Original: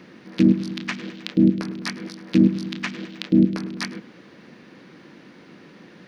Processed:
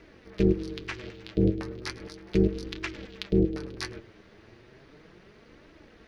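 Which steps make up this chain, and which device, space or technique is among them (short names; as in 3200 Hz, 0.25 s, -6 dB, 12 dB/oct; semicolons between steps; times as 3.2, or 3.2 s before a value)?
alien voice (ring modulator 130 Hz; flange 0.35 Hz, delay 2.9 ms, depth 7.2 ms, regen +48%)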